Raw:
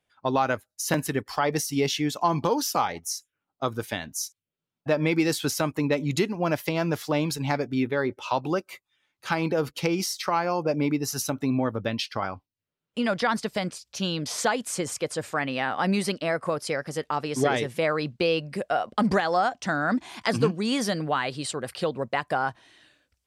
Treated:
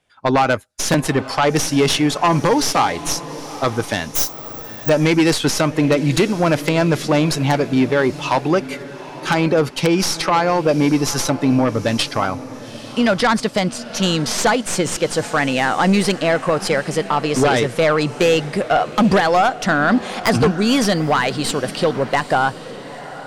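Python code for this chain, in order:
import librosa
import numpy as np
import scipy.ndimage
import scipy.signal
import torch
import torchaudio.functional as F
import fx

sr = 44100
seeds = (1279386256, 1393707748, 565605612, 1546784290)

y = fx.tracing_dist(x, sr, depth_ms=0.078)
y = scipy.signal.sosfilt(scipy.signal.butter(4, 11000.0, 'lowpass', fs=sr, output='sos'), y)
y = fx.fold_sine(y, sr, drive_db=7, ceiling_db=-9.0)
y = fx.echo_diffused(y, sr, ms=852, feedback_pct=42, wet_db=-15)
y = fx.resample_bad(y, sr, factor=2, down='none', up='zero_stuff', at=(4.15, 4.89))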